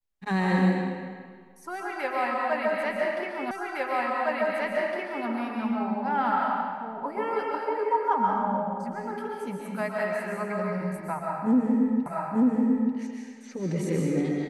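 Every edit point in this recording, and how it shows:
3.51 s: repeat of the last 1.76 s
12.06 s: repeat of the last 0.89 s

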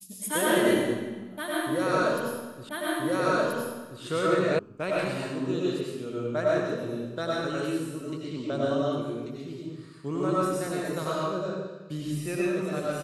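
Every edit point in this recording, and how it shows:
2.69 s: repeat of the last 1.33 s
4.59 s: sound stops dead

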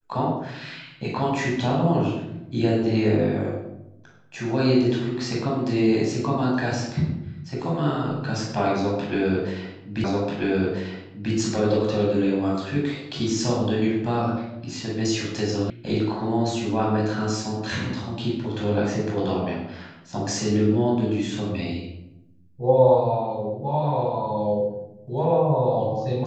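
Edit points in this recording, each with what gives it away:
10.04 s: repeat of the last 1.29 s
15.70 s: sound stops dead

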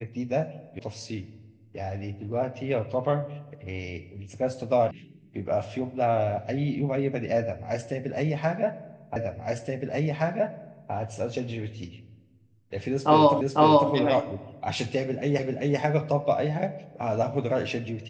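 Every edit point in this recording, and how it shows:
0.79 s: sound stops dead
4.91 s: sound stops dead
9.16 s: repeat of the last 1.77 s
13.41 s: repeat of the last 0.5 s
15.39 s: repeat of the last 0.39 s

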